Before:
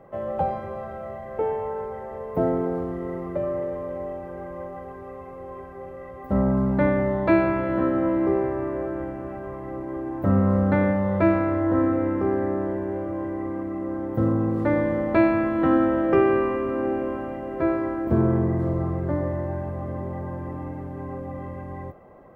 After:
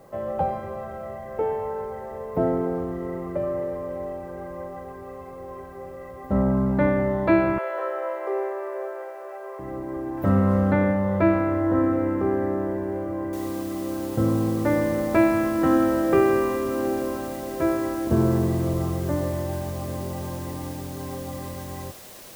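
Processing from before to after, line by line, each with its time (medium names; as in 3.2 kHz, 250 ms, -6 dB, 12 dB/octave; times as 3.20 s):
7.58–9.59 s: steep high-pass 390 Hz 96 dB/octave
10.17–10.72 s: treble shelf 2.6 kHz +11.5 dB
13.33 s: noise floor step -66 dB -45 dB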